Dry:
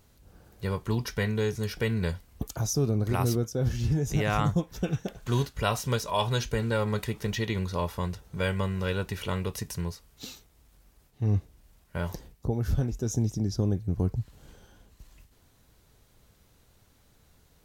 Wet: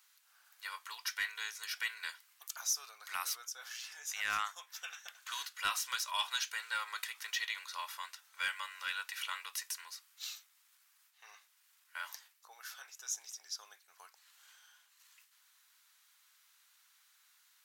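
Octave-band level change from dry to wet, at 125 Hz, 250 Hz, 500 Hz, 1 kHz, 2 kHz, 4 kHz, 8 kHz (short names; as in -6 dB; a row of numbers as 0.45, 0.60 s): under -40 dB, under -40 dB, -31.5 dB, -7.5 dB, -1.0 dB, -1.0 dB, -0.5 dB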